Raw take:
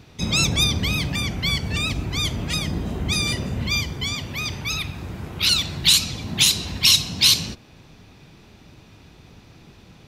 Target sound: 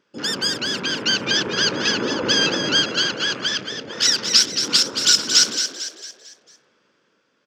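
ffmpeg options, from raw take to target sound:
-filter_complex "[0:a]highpass=270,equalizer=f=360:t=q:w=4:g=3,equalizer=f=520:t=q:w=4:g=-9,equalizer=f=1100:t=q:w=4:g=10,equalizer=f=1900:t=q:w=4:g=3,equalizer=f=2800:t=q:w=4:g=-5,lowpass=f=4400:w=0.5412,lowpass=f=4400:w=1.3066,asetrate=59535,aresample=44100,afwtdn=0.02,dynaudnorm=f=180:g=11:m=2.99,asplit=2[s0][s1];[s1]asplit=5[s2][s3][s4][s5][s6];[s2]adelay=225,afreqshift=50,volume=0.398[s7];[s3]adelay=450,afreqshift=100,volume=0.176[s8];[s4]adelay=675,afreqshift=150,volume=0.0767[s9];[s5]adelay=900,afreqshift=200,volume=0.0339[s10];[s6]adelay=1125,afreqshift=250,volume=0.015[s11];[s7][s8][s9][s10][s11]amix=inputs=5:normalize=0[s12];[s0][s12]amix=inputs=2:normalize=0"

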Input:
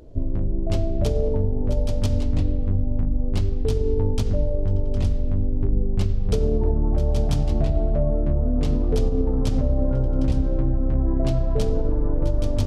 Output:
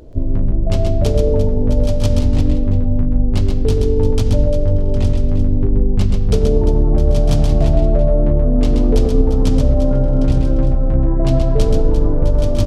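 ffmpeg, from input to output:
-af "aecho=1:1:129|348:0.562|0.282,volume=2"

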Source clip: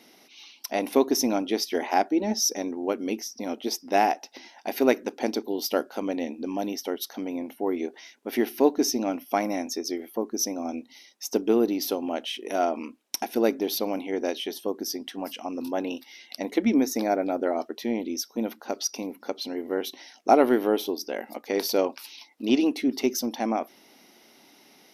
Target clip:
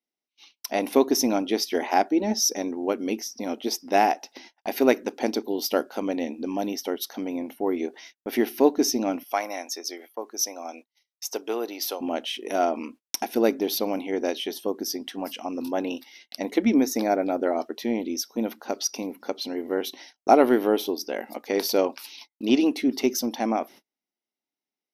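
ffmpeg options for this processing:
-filter_complex "[0:a]asettb=1/sr,asplit=3[s0][s1][s2];[s0]atrim=end=9.234[s3];[s1]atrim=start=9.23:end=12.01,asetpts=PTS-STARTPTS,afade=t=in:d=0.004:c=qsin,afade=t=out:st=2.776:d=0.004:c=qsin,highpass=640[s4];[s2]atrim=start=12.006[s5];[s3][s4]acrossfade=d=0.004:c1=hsin:c2=qsin[s6];[s6][s5]acrossfade=d=0.004:c1=qsin:c2=hsin,agate=range=0.01:threshold=0.00501:ratio=16:detection=peak,volume=1.19"

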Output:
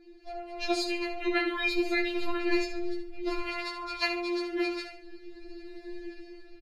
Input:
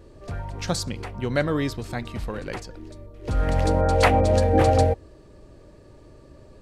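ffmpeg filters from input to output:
-filter_complex "[0:a]equalizer=f=500:t=o:w=0.33:g=4,equalizer=f=2500:t=o:w=0.33:g=9,equalizer=f=4000:t=o:w=0.33:g=10,equalizer=f=8000:t=o:w=0.33:g=-8,acompressor=threshold=0.1:ratio=4,highshelf=f=6100:g=-10.5,asplit=2[s0][s1];[s1]adelay=17,volume=0.631[s2];[s0][s2]amix=inputs=2:normalize=0,asplit=2[s3][s4];[s4]aecho=0:1:71|142|213:0.335|0.104|0.0322[s5];[s3][s5]amix=inputs=2:normalize=0,dynaudnorm=f=120:g=13:m=4.73,afftfilt=real='re*4*eq(mod(b,16),0)':imag='im*4*eq(mod(b,16),0)':win_size=2048:overlap=0.75,volume=0.562"

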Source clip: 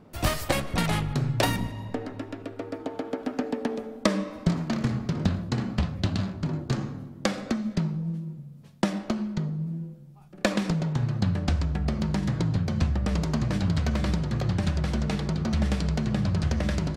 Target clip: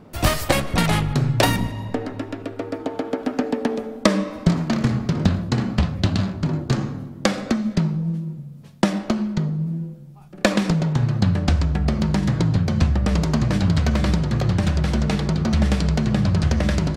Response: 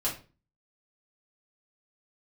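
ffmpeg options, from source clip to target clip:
-filter_complex "[0:a]asettb=1/sr,asplit=3[s0][s1][s2];[s0]atrim=end=14.304[s3];[s1]atrim=start=14.3:end=14.95,asetpts=PTS-STARTPTS,afade=t=in:d=0.004:c=qsin,afade=t=out:st=0.646:d=0.004:c=qsin,aeval=exprs='clip(val(0),-1,0.0944)':c=same[s4];[s2]atrim=start=14.946[s5];[s3][s4]acrossfade=d=0.004:c1=hsin:c2=qsin[s6];[s6][s5]acrossfade=d=0.004:c1=qsin:c2=hsin,volume=2.11"

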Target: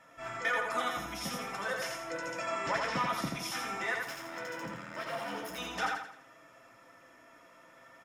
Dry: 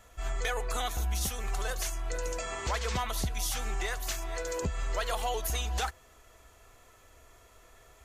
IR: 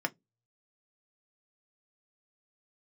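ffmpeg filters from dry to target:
-filter_complex "[0:a]highshelf=f=9400:g=-8,asettb=1/sr,asplit=3[s0][s1][s2];[s0]atrim=end=4.054[s3];[s1]atrim=start=4.05:end=5.58,asetpts=PTS-STARTPTS,afade=t=in:d=0.004:c=qsin,afade=t=out:st=1.526:d=0.004:c=qsin,asoftclip=type=hard:threshold=0.015[s4];[s2]atrim=start=5.576[s5];[s3][s4]acrossfade=d=0.004:c1=hsin:c2=qsin[s6];[s6][s5]acrossfade=d=0.004:c1=qsin:c2=hsin,flanger=delay=6.1:depth=8.4:regen=53:speed=0.47:shape=triangular,aecho=1:1:84|168|252|336|420:0.668|0.267|0.107|0.0428|0.0171[s7];[1:a]atrim=start_sample=2205[s8];[s7][s8]afir=irnorm=-1:irlink=0"

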